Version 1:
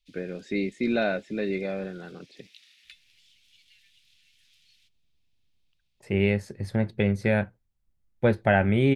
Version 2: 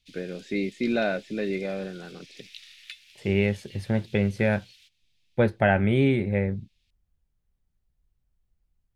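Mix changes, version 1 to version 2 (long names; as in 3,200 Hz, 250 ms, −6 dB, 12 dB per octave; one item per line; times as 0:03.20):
second voice: entry −2.85 s
background +8.5 dB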